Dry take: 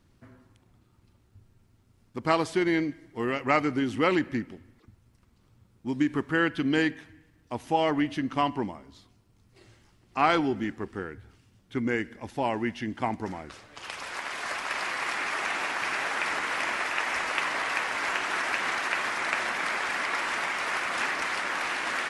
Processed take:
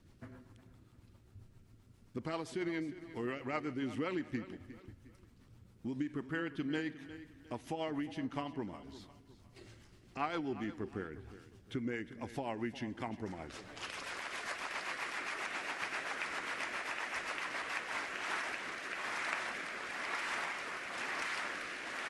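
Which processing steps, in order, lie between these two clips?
downward compressor 2.5 to 1, threshold −41 dBFS, peak gain reduction 15.5 dB
rotating-speaker cabinet horn 7.5 Hz, later 1 Hz, at 0:17.42
repeating echo 357 ms, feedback 36%, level −15 dB
level +2 dB

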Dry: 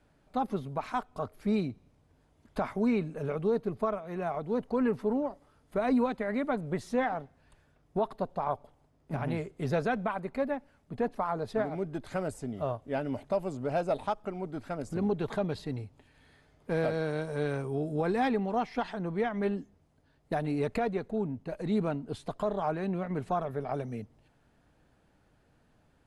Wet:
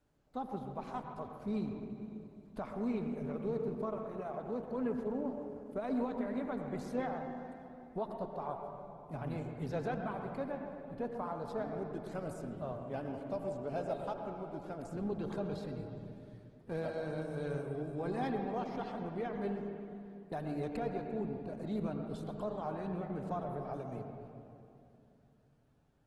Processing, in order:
parametric band 2,000 Hz −4 dB 1.1 octaves
tape delay 125 ms, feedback 27%, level −9.5 dB, low-pass 1,600 Hz
on a send at −4.5 dB: convolution reverb RT60 2.7 s, pre-delay 68 ms
on the sum: level −8.5 dB
Opus 16 kbit/s 48,000 Hz

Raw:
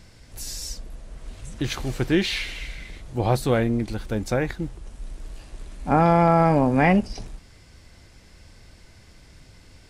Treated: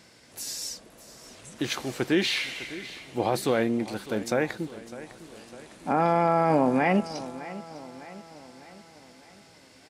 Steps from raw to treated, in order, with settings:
high-pass filter 230 Hz 12 dB per octave
brickwall limiter −12.5 dBFS, peak gain reduction 6.5 dB
repeating echo 604 ms, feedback 52%, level −16 dB

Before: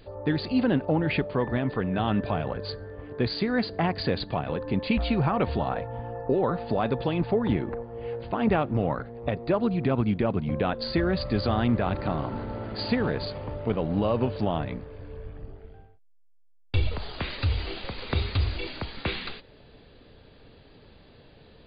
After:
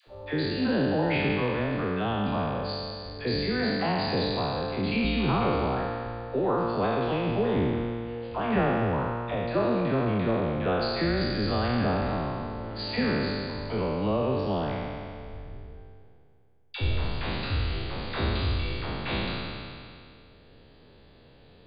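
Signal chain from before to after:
peak hold with a decay on every bin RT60 2.34 s
all-pass dispersion lows, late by 73 ms, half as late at 620 Hz
level −5 dB

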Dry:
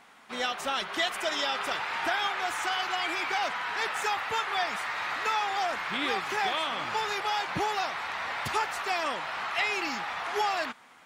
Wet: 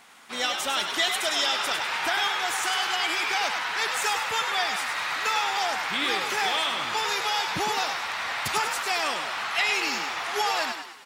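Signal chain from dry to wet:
high-shelf EQ 3,200 Hz +10.5 dB
echo with shifted repeats 101 ms, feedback 47%, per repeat +53 Hz, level −6.5 dB

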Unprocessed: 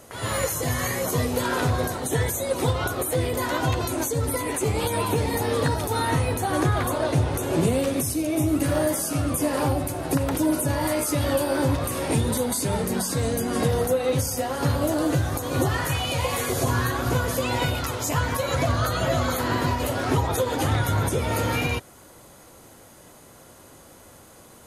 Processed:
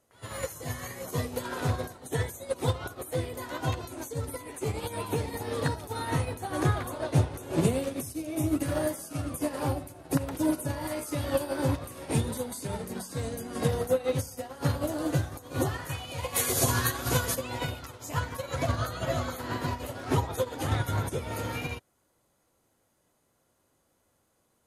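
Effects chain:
0:16.34–0:17.34: high-shelf EQ 3,500 Hz → 2,300 Hz +10.5 dB
expander for the loud parts 2.5 to 1, over −33 dBFS

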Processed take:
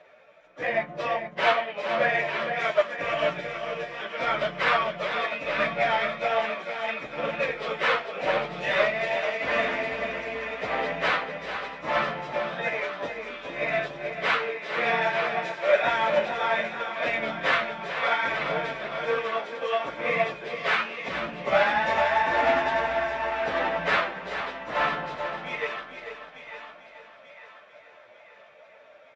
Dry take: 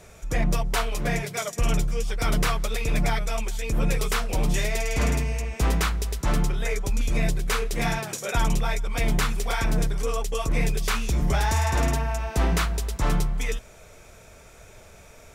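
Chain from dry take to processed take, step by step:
echo with a time of its own for lows and highs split 840 Hz, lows 237 ms, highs 469 ms, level −6.5 dB
time stretch by phase vocoder 1.9×
loudspeaker in its box 400–3,400 Hz, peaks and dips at 400 Hz −7 dB, 580 Hz +9 dB, 1,800 Hz +4 dB
in parallel at −6 dB: soft clipping −23 dBFS, distortion −18 dB
on the sum: single-tap delay 443 ms −7 dB
expander for the loud parts 1.5 to 1, over −42 dBFS
level +4.5 dB

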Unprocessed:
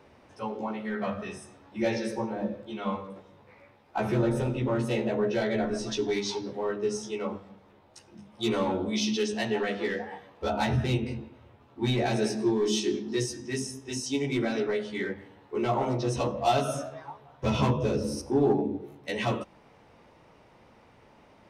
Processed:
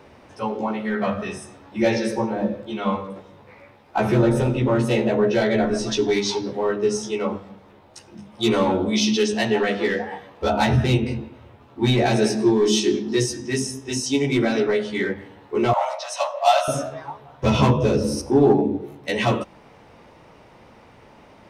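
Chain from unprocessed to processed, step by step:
0:15.73–0:16.68: linear-phase brick-wall high-pass 530 Hz
level +8 dB

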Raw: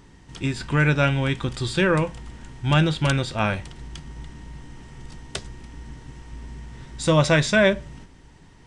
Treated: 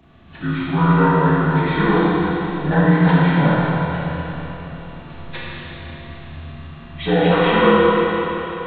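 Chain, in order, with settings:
partials spread apart or drawn together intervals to 76%
four-comb reverb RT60 3.8 s, combs from 26 ms, DRR −6.5 dB

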